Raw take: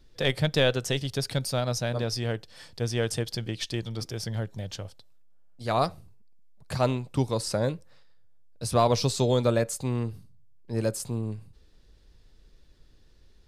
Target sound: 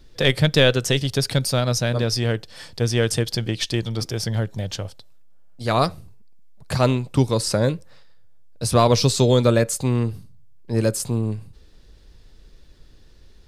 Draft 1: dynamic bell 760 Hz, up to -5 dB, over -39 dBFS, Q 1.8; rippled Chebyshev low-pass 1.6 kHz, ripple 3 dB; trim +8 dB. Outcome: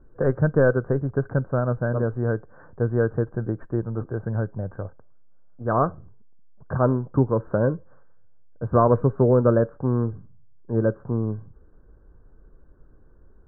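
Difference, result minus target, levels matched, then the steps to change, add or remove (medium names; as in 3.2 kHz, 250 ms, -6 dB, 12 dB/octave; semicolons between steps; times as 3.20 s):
2 kHz band -4.5 dB
remove: rippled Chebyshev low-pass 1.6 kHz, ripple 3 dB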